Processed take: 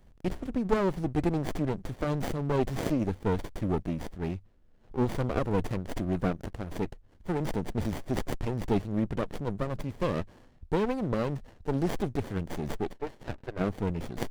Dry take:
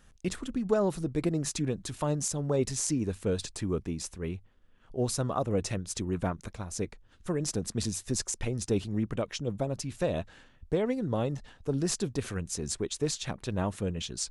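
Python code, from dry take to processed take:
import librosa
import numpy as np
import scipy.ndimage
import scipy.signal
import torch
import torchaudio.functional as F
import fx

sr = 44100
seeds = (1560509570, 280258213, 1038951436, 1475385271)

y = fx.cabinet(x, sr, low_hz=370.0, low_slope=24, high_hz=2500.0, hz=(480.0, 960.0, 1500.0), db=(-6, 9, 4), at=(12.91, 13.59), fade=0.02)
y = fx.running_max(y, sr, window=33)
y = F.gain(torch.from_numpy(y), 3.0).numpy()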